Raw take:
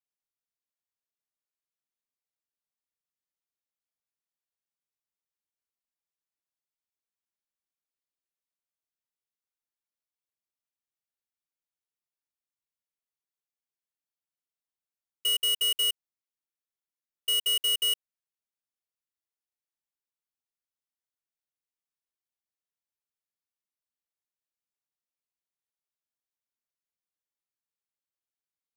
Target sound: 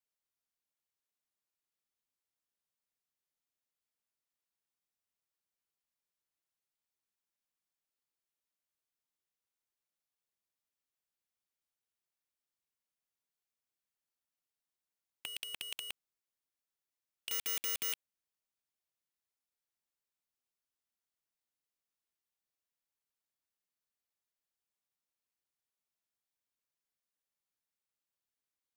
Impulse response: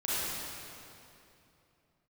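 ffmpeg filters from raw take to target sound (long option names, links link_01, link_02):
-filter_complex "[0:a]asettb=1/sr,asplit=3[link_01][link_02][link_03];[link_01]atrim=end=17.314[link_04];[link_02]atrim=start=17.31:end=17.93,asetpts=PTS-STARTPTS,afade=type=in:duration=0.004:curve=qsin,afade=type=out:start_time=0.616:duration=0.004:curve=qsin,equalizer=frequency=2800:width_type=o:width=0.87:gain=9[link_05];[link_03]atrim=start=17.926[link_06];[link_04][link_05]acrossfade=duration=0.004:curve1=hsin:curve2=qsin[link_07];[link_07][link_06]acrossfade=duration=0.004:curve1=qsin:curve2=hsin,aeval=exprs='(mod(31.6*val(0)+1,2)-1)/31.6':channel_layout=same"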